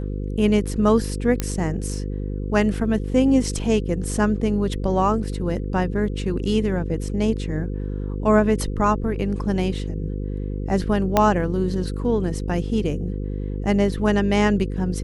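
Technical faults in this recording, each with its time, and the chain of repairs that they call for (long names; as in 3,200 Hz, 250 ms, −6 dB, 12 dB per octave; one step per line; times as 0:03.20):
mains buzz 50 Hz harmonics 10 −27 dBFS
0:01.40: click −8 dBFS
0:11.17: click −3 dBFS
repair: click removal
hum removal 50 Hz, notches 10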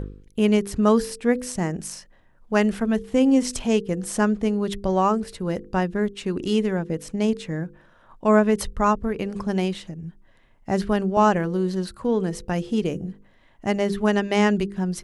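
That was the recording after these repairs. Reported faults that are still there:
0:11.17: click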